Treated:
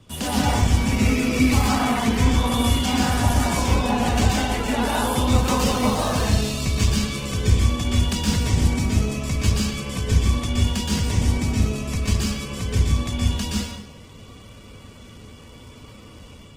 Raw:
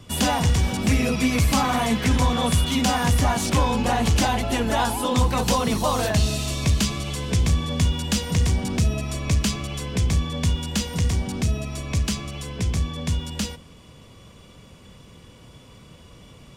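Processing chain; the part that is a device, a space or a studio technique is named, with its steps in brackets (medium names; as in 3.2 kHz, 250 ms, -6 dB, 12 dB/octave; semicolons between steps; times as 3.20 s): speakerphone in a meeting room (reverberation RT60 0.80 s, pre-delay 117 ms, DRR -4.5 dB; level rider gain up to 3 dB; trim -5 dB; Opus 16 kbps 48 kHz)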